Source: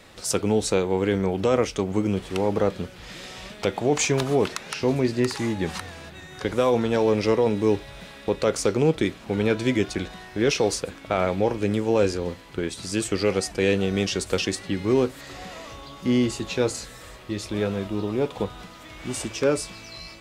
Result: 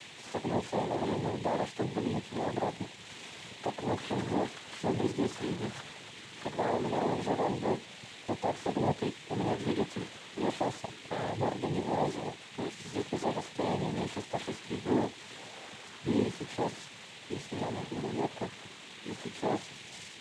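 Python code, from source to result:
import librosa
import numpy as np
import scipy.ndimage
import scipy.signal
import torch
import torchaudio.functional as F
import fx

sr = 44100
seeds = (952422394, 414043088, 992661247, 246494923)

y = fx.delta_mod(x, sr, bps=32000, step_db=-37.5)
y = fx.dmg_noise_band(y, sr, seeds[0], low_hz=2400.0, high_hz=3800.0, level_db=-43.0)
y = fx.noise_vocoder(y, sr, seeds[1], bands=6)
y = F.gain(torch.from_numpy(y), -8.5).numpy()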